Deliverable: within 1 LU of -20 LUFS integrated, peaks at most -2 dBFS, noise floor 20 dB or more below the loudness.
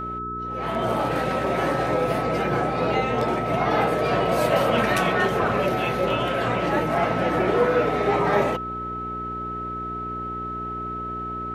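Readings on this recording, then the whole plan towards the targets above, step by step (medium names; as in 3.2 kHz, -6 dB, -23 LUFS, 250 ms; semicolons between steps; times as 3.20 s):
hum 60 Hz; highest harmonic 420 Hz; hum level -32 dBFS; steady tone 1.3 kHz; tone level -29 dBFS; loudness -23.5 LUFS; peak level -6.5 dBFS; loudness target -20.0 LUFS
-> de-hum 60 Hz, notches 7; band-stop 1.3 kHz, Q 30; trim +3.5 dB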